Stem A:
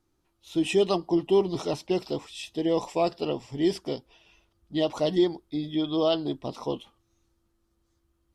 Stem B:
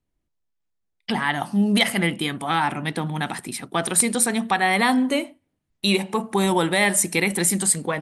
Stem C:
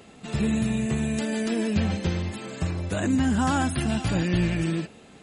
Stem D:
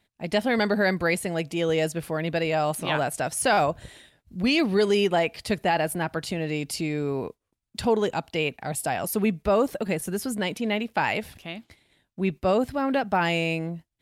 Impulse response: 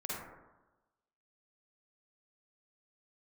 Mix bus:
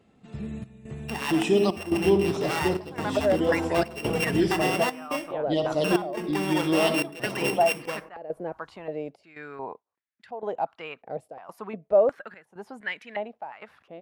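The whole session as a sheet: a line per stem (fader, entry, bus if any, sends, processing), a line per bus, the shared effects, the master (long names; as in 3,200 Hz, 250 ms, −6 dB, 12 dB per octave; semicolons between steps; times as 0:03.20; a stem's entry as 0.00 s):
−4.5 dB, 0.75 s, send −4 dB, no processing
−8.0 dB, 0.00 s, send −13.5 dB, samples sorted by size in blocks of 16 samples; bass and treble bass −15 dB, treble −6 dB
−15.0 dB, 0.00 s, send −10.5 dB, high-shelf EQ 3,800 Hz −10 dB
−6.0 dB, 2.45 s, no send, automatic gain control gain up to 13 dB; band-pass on a step sequencer 2.8 Hz 500–1,800 Hz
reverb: on, RT60 1.1 s, pre-delay 42 ms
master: parametric band 120 Hz +4.5 dB 2.9 octaves; gate pattern "xxxxxx..xx" 141 BPM −12 dB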